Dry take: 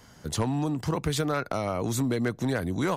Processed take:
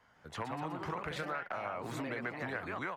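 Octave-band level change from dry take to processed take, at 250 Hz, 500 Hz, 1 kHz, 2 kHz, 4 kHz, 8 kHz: −15.0, −11.0, −5.5, −3.0, −12.0, −20.0 decibels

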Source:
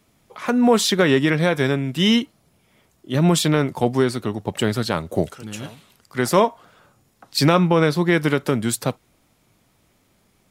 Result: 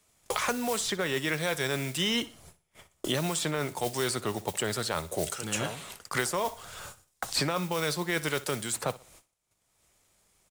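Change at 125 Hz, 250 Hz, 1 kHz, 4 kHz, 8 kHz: −14.0, −15.5, −9.0, −6.5, −3.0 decibels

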